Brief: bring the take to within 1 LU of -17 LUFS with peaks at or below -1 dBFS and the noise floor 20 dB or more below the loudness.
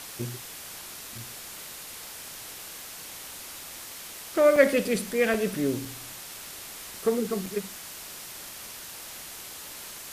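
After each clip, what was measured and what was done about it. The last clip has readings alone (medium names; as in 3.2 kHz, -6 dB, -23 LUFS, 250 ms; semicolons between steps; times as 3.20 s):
dropouts 6; longest dropout 2.9 ms; noise floor -42 dBFS; noise floor target -51 dBFS; loudness -30.5 LUFS; peak level -5.5 dBFS; loudness target -17.0 LUFS
-> interpolate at 0.22/1.18/4.56/5.34/5.85/7.46 s, 2.9 ms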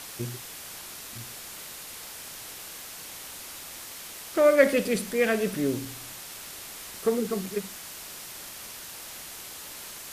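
dropouts 0; noise floor -42 dBFS; noise floor target -51 dBFS
-> noise print and reduce 9 dB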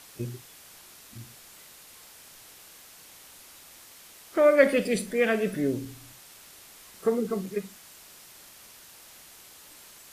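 noise floor -51 dBFS; loudness -26.0 LUFS; peak level -5.5 dBFS; loudness target -17.0 LUFS
-> trim +9 dB; peak limiter -1 dBFS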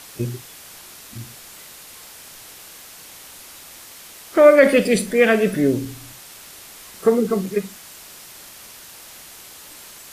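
loudness -17.5 LUFS; peak level -1.0 dBFS; noise floor -42 dBFS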